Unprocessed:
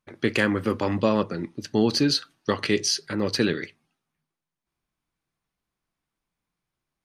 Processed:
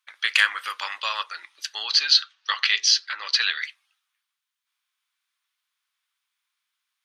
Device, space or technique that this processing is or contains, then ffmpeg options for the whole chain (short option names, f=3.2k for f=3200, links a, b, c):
headphones lying on a table: -filter_complex "[0:a]asettb=1/sr,asplit=3[a][b][c];[a]atrim=end=1.834[d];[b]atrim=start=1.83:end=3.61,asetpts=PTS-STARTPTS,afade=t=in:d=0.004:c=qsin,afade=t=out:st=1.776:d=0.004:c=qsin,lowpass=f=5.8k:w=0.5412,lowpass=f=5.8k:w=1.3066[e];[c]atrim=start=3.606[f];[d][e]acrossfade=d=0.004:c1=hsin:c2=qsin[g];[g][f]acrossfade=d=0.004:c1=qsin:c2=hsin,highpass=f=1.2k:w=0.5412,highpass=f=1.2k:w=1.3066,equalizer=f=3.4k:t=o:w=0.57:g=6,volume=6dB"